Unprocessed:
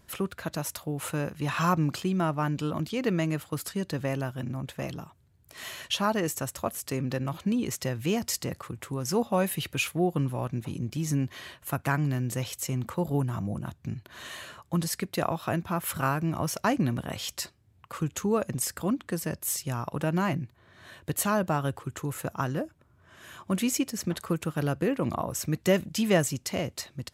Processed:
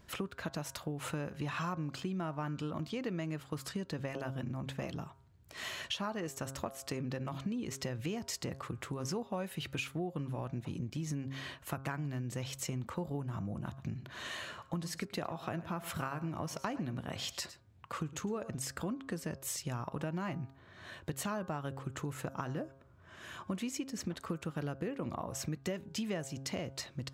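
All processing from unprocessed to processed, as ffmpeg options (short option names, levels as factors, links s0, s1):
-filter_complex "[0:a]asettb=1/sr,asplit=3[s0][s1][s2];[s0]atrim=end=13.664[s3];[s1]atrim=start=13.66:end=18.51,asetpts=PTS-STARTPTS,afade=t=in:d=0.004:c=qsin,afade=t=out:st=4.846:d=0.004:c=qsin,highpass=61,aecho=1:1:107:0.141,atrim=end_sample=213885[s4];[s2]atrim=start=18.506[s5];[s3][s4]acrossfade=d=0.004:c1=hsin:c2=qsin[s6];[s6][s5]acrossfade=d=0.004:c1=qsin:c2=hsin,equalizer=f=12000:t=o:w=0.89:g=-11,bandreject=f=135:t=h:w=4,bandreject=f=270:t=h:w=4,bandreject=f=405:t=h:w=4,bandreject=f=540:t=h:w=4,bandreject=f=675:t=h:w=4,bandreject=f=810:t=h:w=4,bandreject=f=945:t=h:w=4,bandreject=f=1080:t=h:w=4,bandreject=f=1215:t=h:w=4,bandreject=f=1350:t=h:w=4,bandreject=f=1485:t=h:w=4,bandreject=f=1620:t=h:w=4,acompressor=threshold=0.0178:ratio=6"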